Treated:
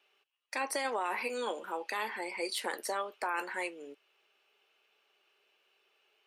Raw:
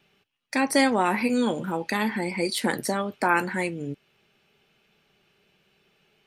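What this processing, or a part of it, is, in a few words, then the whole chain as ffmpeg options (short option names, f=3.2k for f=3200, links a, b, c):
laptop speaker: -af "highpass=f=390:w=0.5412,highpass=f=390:w=1.3066,equalizer=f=1.1k:t=o:w=0.56:g=4.5,equalizer=f=2.8k:t=o:w=0.23:g=5,alimiter=limit=-16dB:level=0:latency=1:release=24,volume=-7.5dB"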